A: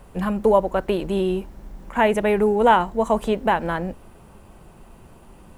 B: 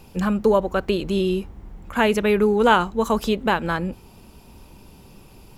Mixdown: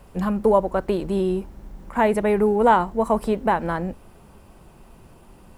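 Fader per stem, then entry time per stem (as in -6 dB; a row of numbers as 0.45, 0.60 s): -2.0, -12.5 dB; 0.00, 0.00 s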